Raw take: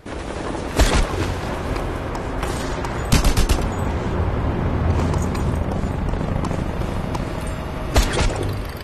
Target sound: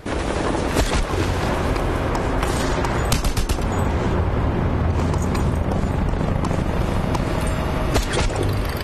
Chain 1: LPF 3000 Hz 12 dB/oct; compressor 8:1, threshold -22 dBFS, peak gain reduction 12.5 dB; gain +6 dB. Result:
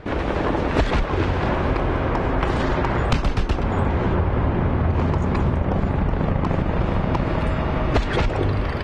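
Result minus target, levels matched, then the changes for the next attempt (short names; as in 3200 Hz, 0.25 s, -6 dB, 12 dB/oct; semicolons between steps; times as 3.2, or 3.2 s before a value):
4000 Hz band -4.5 dB
remove: LPF 3000 Hz 12 dB/oct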